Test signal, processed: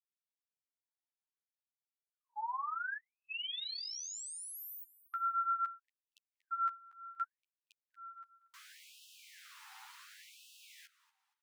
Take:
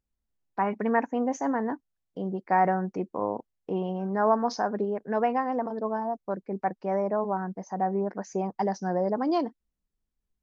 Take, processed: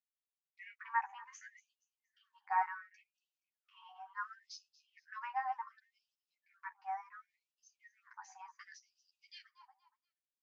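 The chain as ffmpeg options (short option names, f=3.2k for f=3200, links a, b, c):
-filter_complex "[0:a]equalizer=f=720:w=2.7:g=3,asplit=2[a][b];[b]aecho=0:1:236|472|708:0.112|0.037|0.0122[c];[a][c]amix=inputs=2:normalize=0,flanger=delay=9.1:depth=3.8:regen=-1:speed=0.51:shape=sinusoidal,highshelf=f=5.1k:g=-8.5,afftfilt=real='re*gte(b*sr/1024,740*pow(2600/740,0.5+0.5*sin(2*PI*0.69*pts/sr)))':imag='im*gte(b*sr/1024,740*pow(2600/740,0.5+0.5*sin(2*PI*0.69*pts/sr)))':win_size=1024:overlap=0.75,volume=-4dB"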